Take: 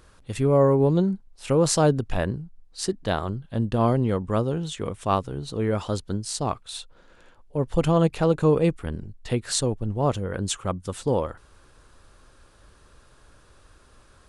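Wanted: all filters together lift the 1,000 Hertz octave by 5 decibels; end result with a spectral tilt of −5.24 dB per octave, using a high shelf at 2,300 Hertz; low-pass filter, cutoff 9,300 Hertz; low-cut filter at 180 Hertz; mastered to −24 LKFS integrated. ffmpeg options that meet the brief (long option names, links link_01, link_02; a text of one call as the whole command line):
ffmpeg -i in.wav -af "highpass=180,lowpass=9300,equalizer=frequency=1000:width_type=o:gain=8,highshelf=frequency=2300:gain=-9,volume=0.5dB" out.wav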